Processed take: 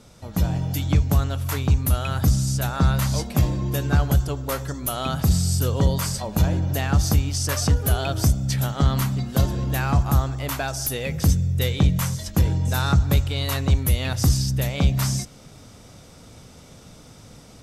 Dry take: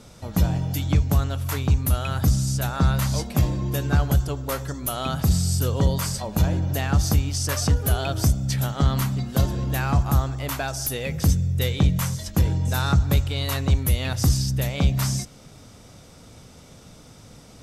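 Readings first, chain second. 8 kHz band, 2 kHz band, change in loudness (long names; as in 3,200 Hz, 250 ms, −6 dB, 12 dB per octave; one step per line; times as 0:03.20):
+1.0 dB, +1.0 dB, +1.0 dB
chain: automatic gain control gain up to 4 dB
level −3 dB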